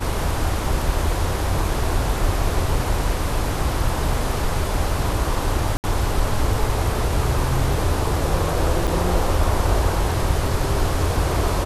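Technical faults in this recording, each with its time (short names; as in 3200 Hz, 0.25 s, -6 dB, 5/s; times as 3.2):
5.77–5.84 gap 69 ms
8.87–8.88 gap 6.7 ms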